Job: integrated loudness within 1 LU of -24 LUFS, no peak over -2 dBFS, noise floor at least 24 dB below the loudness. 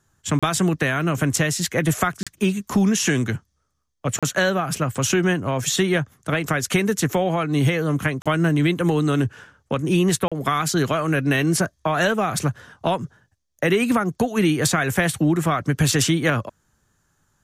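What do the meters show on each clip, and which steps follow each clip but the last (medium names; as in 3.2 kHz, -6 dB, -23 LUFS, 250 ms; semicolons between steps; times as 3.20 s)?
dropouts 5; longest dropout 36 ms; loudness -21.5 LUFS; peak level -5.5 dBFS; loudness target -24.0 LUFS
-> interpolate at 0.39/2.23/4.19/8.22/10.28 s, 36 ms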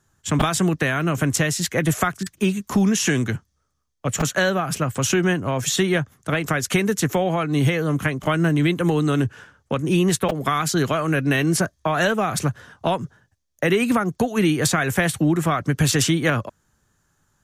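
dropouts 0; loudness -21.5 LUFS; peak level -4.5 dBFS; loudness target -24.0 LUFS
-> trim -2.5 dB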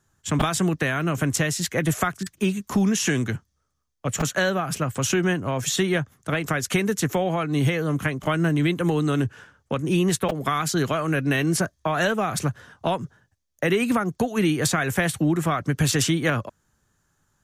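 loudness -24.0 LUFS; peak level -7.0 dBFS; noise floor -72 dBFS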